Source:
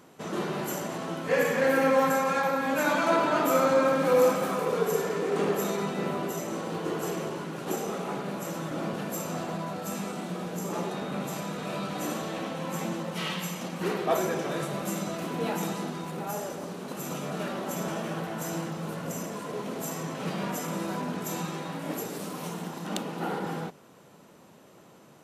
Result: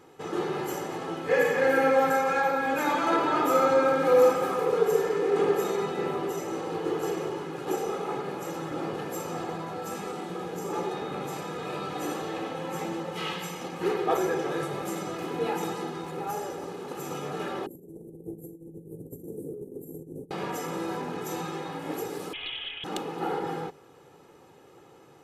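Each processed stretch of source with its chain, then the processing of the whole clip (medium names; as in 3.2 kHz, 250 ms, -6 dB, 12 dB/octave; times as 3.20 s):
17.66–20.31 s: inverse Chebyshev band-stop 1.1–4.3 kHz, stop band 60 dB + compressor with a negative ratio -40 dBFS, ratio -0.5
22.33–22.84 s: frequency inversion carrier 3.4 kHz + comb 7.2 ms, depth 40% + loudspeaker Doppler distortion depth 0.17 ms
whole clip: treble shelf 3.7 kHz -7 dB; comb 2.4 ms, depth 66%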